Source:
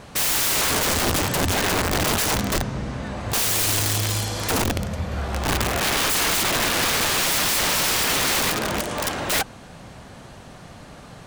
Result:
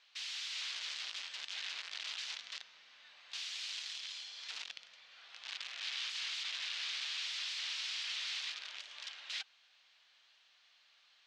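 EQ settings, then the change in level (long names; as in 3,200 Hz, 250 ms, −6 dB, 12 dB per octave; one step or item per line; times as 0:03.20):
four-pole ladder band-pass 4,500 Hz, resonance 25%
high-frequency loss of the air 170 metres
+1.0 dB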